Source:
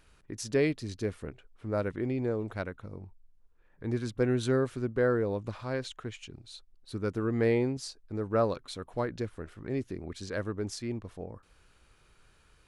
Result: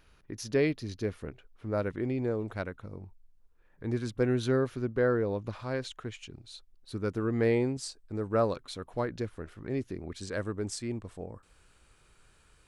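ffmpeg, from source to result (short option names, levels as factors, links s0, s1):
-af "asetnsamples=n=441:p=0,asendcmd='1.15 equalizer g -7;1.93 equalizer g -0.5;4.4 equalizer g -11.5;5.53 equalizer g -1;7.54 equalizer g 7;8.61 equalizer g -1.5;10.21 equalizer g 9.5',equalizer=f=8100:t=o:w=0.25:g=-14.5"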